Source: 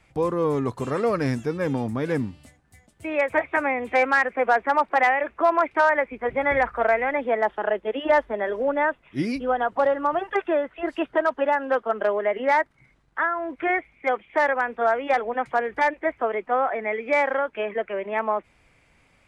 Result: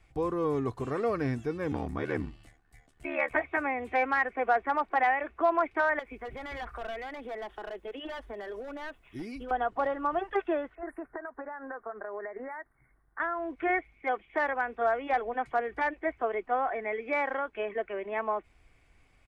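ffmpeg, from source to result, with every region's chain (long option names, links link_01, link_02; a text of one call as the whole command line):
ffmpeg -i in.wav -filter_complex "[0:a]asettb=1/sr,asplit=3[link_01][link_02][link_03];[link_01]atrim=end=1.714[link_04];[link_02]atrim=start=1.71:end=3.37,asetpts=PTS-STARTPTS,afade=type=in:duration=0.004:curve=qsin,afade=type=out:start_time=1.656:duration=0.004:curve=qsin,equalizer=frequency=1600:width=0.48:gain=6.5,aeval=exprs='val(0)*sin(2*PI*37*n/s)':channel_layout=same[link_05];[link_03]atrim=start=3.366[link_06];[link_04][link_05]acrossfade=duration=0.004:curve1=hsin:curve2=qsin[link_07];[link_07][link_06]acrossfade=duration=0.004:curve1=qsin:curve2=hsin,asettb=1/sr,asplit=3[link_08][link_09][link_10];[link_08]atrim=end=5.994[link_11];[link_09]atrim=start=5.99:end=9.51,asetpts=PTS-STARTPTS,afade=type=in:duration=0.004:curve=qsin,afade=type=out:start_time=3.516:duration=0.004:curve=qsin,aemphasis=mode=production:type=50kf,asoftclip=type=hard:threshold=-20.5dB,acompressor=threshold=-30dB:ratio=6:attack=3.2:release=140:knee=1:detection=peak[link_12];[link_10]atrim=start=9.506[link_13];[link_11][link_12]acrossfade=duration=0.004:curve1=hsin:curve2=qsin[link_14];[link_14][link_13]acrossfade=duration=0.004:curve1=qsin:curve2=hsin,asettb=1/sr,asplit=3[link_15][link_16][link_17];[link_15]atrim=end=10.754[link_18];[link_16]atrim=start=10.75:end=13.2,asetpts=PTS-STARTPTS,afade=type=in:duration=0.004:curve=qsin,afade=type=out:start_time=2.446:duration=0.004:curve=qsin,tiltshelf=frequency=760:gain=-4.5,acompressor=threshold=-27dB:ratio=16:attack=3.2:release=140:knee=1:detection=peak,asuperstop=centerf=4400:order=12:qfactor=0.61[link_19];[link_17]atrim=start=13.196[link_20];[link_18][link_19]acrossfade=duration=0.004:curve1=hsin:curve2=qsin[link_21];[link_21][link_20]acrossfade=duration=0.004:curve1=qsin:curve2=hsin,acrossover=split=3800[link_22][link_23];[link_23]acompressor=threshold=-53dB:ratio=4:attack=1:release=60[link_24];[link_22][link_24]amix=inputs=2:normalize=0,lowshelf=frequency=75:gain=11,aecho=1:1:2.7:0.34,volume=-7dB" out.wav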